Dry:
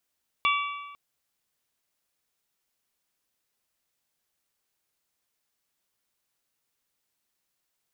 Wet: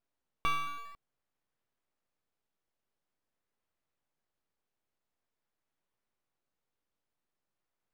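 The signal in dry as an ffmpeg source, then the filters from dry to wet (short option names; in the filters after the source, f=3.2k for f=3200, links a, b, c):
-f lavfi -i "aevalsrc='0.0841*pow(10,-3*t/1.3)*sin(2*PI*1150*t)+0.0631*pow(10,-3*t/1.056)*sin(2*PI*2300*t)+0.0473*pow(10,-3*t/1)*sin(2*PI*2760*t)+0.0355*pow(10,-3*t/0.935)*sin(2*PI*3450*t)':d=0.5:s=44100"
-filter_complex "[0:a]aeval=exprs='if(lt(val(0),0),0.251*val(0),val(0))':c=same,lowpass=f=1.3k:p=1,asplit=2[a][b];[b]acrusher=samples=12:mix=1:aa=0.000001:lfo=1:lforange=12:lforate=0.47,volume=-11dB[c];[a][c]amix=inputs=2:normalize=0"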